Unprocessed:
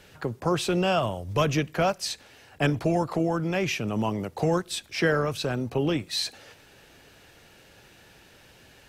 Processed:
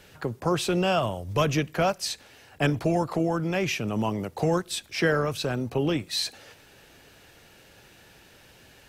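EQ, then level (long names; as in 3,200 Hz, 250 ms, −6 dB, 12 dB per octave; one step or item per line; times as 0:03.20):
high-shelf EQ 11,000 Hz +4 dB
0.0 dB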